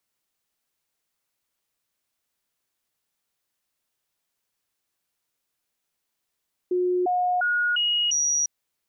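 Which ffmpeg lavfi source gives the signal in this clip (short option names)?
-f lavfi -i "aevalsrc='0.1*clip(min(mod(t,0.35),0.35-mod(t,0.35))/0.005,0,1)*sin(2*PI*361*pow(2,floor(t/0.35)/1)*mod(t,0.35))':d=1.75:s=44100"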